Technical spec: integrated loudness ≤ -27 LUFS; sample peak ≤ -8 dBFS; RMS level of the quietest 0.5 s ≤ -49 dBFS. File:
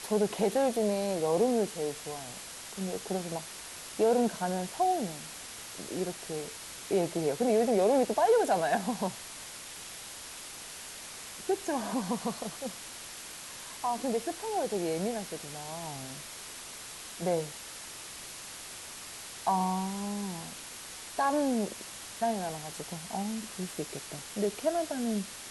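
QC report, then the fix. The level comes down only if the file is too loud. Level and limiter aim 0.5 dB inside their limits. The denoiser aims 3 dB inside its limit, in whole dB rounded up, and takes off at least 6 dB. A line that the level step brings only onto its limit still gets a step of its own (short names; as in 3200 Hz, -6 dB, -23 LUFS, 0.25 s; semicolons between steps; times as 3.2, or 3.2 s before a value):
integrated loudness -32.5 LUFS: OK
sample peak -15.5 dBFS: OK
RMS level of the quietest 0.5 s -44 dBFS: fail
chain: denoiser 8 dB, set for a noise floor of -44 dBFS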